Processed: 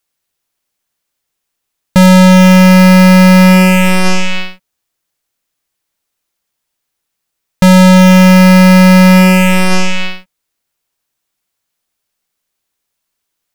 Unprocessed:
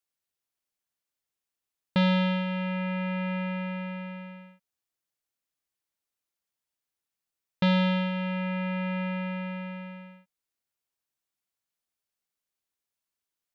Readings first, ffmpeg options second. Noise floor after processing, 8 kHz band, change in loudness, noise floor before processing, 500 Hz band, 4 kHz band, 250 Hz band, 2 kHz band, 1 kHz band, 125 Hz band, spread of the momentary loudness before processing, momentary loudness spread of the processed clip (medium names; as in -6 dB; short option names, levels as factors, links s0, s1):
-74 dBFS, no reading, +23.5 dB, under -85 dBFS, +23.0 dB, +20.5 dB, +24.0 dB, +22.5 dB, +22.5 dB, +24.0 dB, 16 LU, 11 LU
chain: -af "volume=37.6,asoftclip=hard,volume=0.0266,aeval=exprs='0.0282*(cos(1*acos(clip(val(0)/0.0282,-1,1)))-cos(1*PI/2))+0.00708*(cos(3*acos(clip(val(0)/0.0282,-1,1)))-cos(3*PI/2))+0.000708*(cos(5*acos(clip(val(0)/0.0282,-1,1)))-cos(5*PI/2))+0.00794*(cos(6*acos(clip(val(0)/0.0282,-1,1)))-cos(6*PI/2))+0.001*(cos(7*acos(clip(val(0)/0.0282,-1,1)))-cos(7*PI/2))':c=same,alimiter=level_in=50.1:limit=0.891:release=50:level=0:latency=1,volume=0.891"